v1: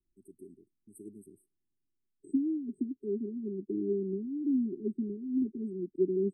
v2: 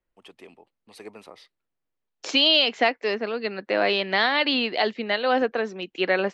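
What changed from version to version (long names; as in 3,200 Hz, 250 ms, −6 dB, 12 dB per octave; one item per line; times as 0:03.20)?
master: remove linear-phase brick-wall band-stop 410–8,000 Hz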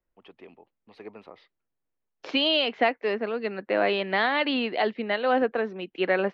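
master: add high-frequency loss of the air 310 metres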